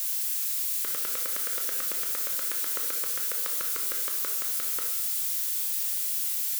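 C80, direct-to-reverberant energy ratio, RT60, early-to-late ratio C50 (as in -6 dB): 8.0 dB, 2.0 dB, 0.80 s, 5.0 dB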